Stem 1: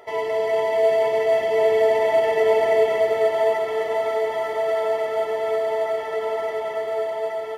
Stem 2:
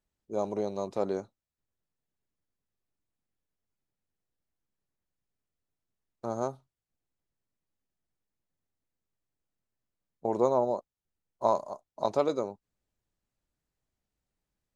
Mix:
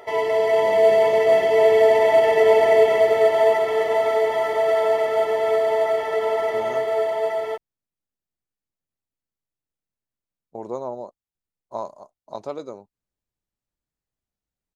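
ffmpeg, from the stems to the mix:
-filter_complex "[0:a]volume=3dB[a];[1:a]adelay=300,volume=-4.5dB[b];[a][b]amix=inputs=2:normalize=0"

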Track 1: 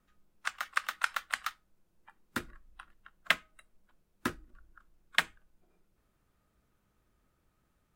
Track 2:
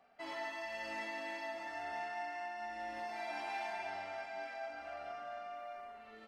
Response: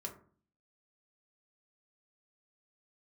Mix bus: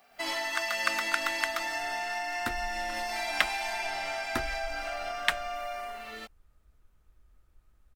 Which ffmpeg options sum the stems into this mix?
-filter_complex "[0:a]asubboost=boost=7.5:cutoff=62,adelay=100,volume=-6dB[a];[1:a]acompressor=threshold=-43dB:ratio=6,crystalizer=i=5.5:c=0,volume=2.5dB[b];[a][b]amix=inputs=2:normalize=0,dynaudnorm=f=100:g=3:m=7dB"

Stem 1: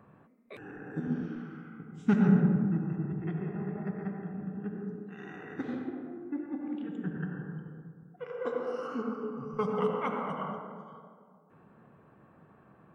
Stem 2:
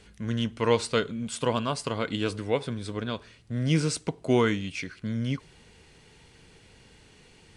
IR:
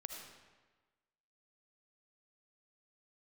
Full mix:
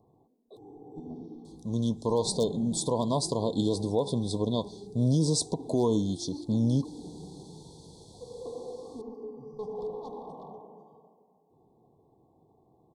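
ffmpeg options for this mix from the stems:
-filter_complex "[0:a]asoftclip=type=tanh:threshold=-27.5dB,aecho=1:1:2.6:0.55,volume=-4.5dB[a];[1:a]highpass=f=90:p=1,dynaudnorm=f=160:g=9:m=4.5dB,adelay=1450,volume=1dB[b];[a][b]amix=inputs=2:normalize=0,aeval=exprs='0.473*(abs(mod(val(0)/0.473+3,4)-2)-1)':c=same,asuperstop=centerf=1900:order=20:qfactor=0.76,alimiter=limit=-16dB:level=0:latency=1:release=101"

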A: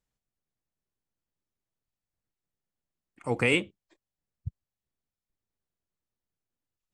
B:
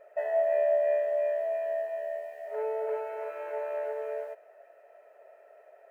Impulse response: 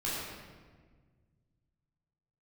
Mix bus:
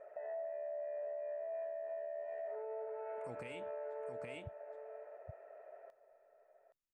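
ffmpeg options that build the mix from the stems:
-filter_complex "[0:a]acompressor=threshold=-25dB:ratio=6,volume=-9.5dB,asplit=2[a][b];[b]volume=-7dB[c];[1:a]lowpass=1.7k,alimiter=level_in=1dB:limit=-24dB:level=0:latency=1:release=78,volume=-1dB,acompressor=threshold=-36dB:ratio=6,volume=0dB,asplit=2[d][e];[e]volume=-12dB[f];[c][f]amix=inputs=2:normalize=0,aecho=0:1:821:1[g];[a][d][g]amix=inputs=3:normalize=0,alimiter=level_in=12.5dB:limit=-24dB:level=0:latency=1:release=245,volume=-12.5dB"

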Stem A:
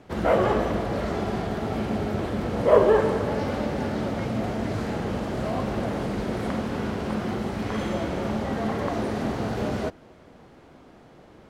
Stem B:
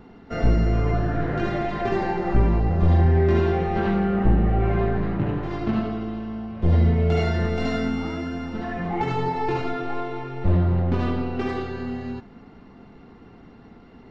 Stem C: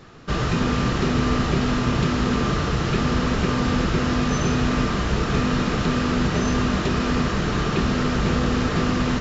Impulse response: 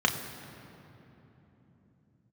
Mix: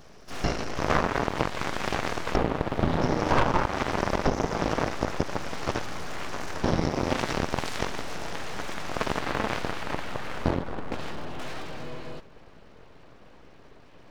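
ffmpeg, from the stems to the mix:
-filter_complex "[0:a]adelay=650,volume=0.5dB,asplit=2[a][b];[b]volume=-9.5dB[c];[1:a]highshelf=f=3.9k:g=9.5,volume=2.5dB[d];[2:a]alimiter=limit=-19dB:level=0:latency=1,lowpass=f=5.5k:t=q:w=9.9,volume=-9dB,asplit=3[e][f][g];[e]atrim=end=2.36,asetpts=PTS-STARTPTS,afade=t=out:st=2.356:d=0.004:c=hsin[h];[f]atrim=start=2.36:end=3.01,asetpts=PTS-STARTPTS,volume=0[i];[g]atrim=start=3.01,asetpts=PTS-STARTPTS,afade=t=in:d=0.004:c=hsin[j];[h][i][j]concat=n=3:v=0:a=1[k];[3:a]atrim=start_sample=2205[l];[c][l]afir=irnorm=-1:irlink=0[m];[a][d][k][m]amix=inputs=4:normalize=0,aeval=exprs='abs(val(0))':c=same,aeval=exprs='1.26*(cos(1*acos(clip(val(0)/1.26,-1,1)))-cos(1*PI/2))+0.0794*(cos(6*acos(clip(val(0)/1.26,-1,1)))-cos(6*PI/2))+0.282*(cos(7*acos(clip(val(0)/1.26,-1,1)))-cos(7*PI/2))':c=same,acompressor=threshold=-20dB:ratio=4"

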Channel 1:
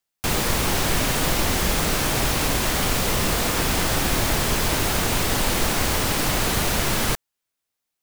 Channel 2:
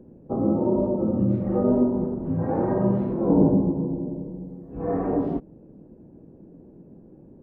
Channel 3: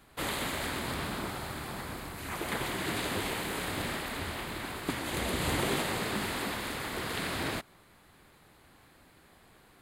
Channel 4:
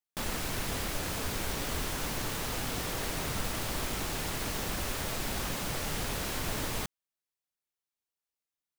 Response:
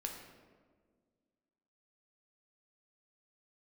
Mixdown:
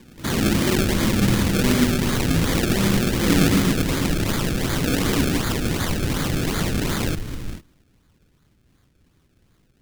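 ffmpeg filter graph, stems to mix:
-filter_complex "[0:a]highpass=96,volume=2.5dB[a];[1:a]volume=3dB[b];[2:a]lowshelf=f=220:g=8,alimiter=level_in=0.5dB:limit=-24dB:level=0:latency=1:release=146,volume=-0.5dB,volume=-3dB,asplit=2[c][d];[d]volume=-19dB[e];[3:a]lowpass=1k,lowshelf=f=340:g=7.5,adelay=700,volume=0dB,asplit=2[f][g];[g]volume=-21.5dB[h];[4:a]atrim=start_sample=2205[i];[e][h]amix=inputs=2:normalize=0[j];[j][i]afir=irnorm=-1:irlink=0[k];[a][b][c][f][k]amix=inputs=5:normalize=0,acrusher=samples=31:mix=1:aa=0.000001:lfo=1:lforange=31:lforate=2.7,equalizer=f=730:t=o:w=1.6:g=-11.5"

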